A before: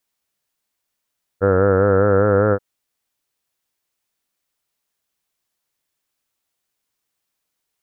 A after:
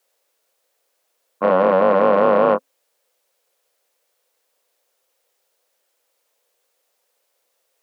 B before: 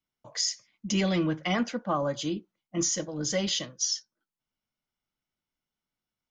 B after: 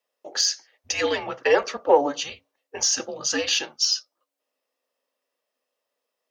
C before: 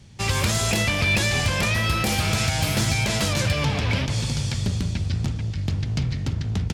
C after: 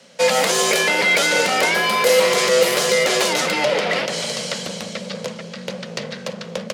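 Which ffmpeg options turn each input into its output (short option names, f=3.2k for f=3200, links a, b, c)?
-af "afreqshift=-280,asoftclip=type=tanh:threshold=-15dB,highpass=f=510:t=q:w=4.9,volume=7dB"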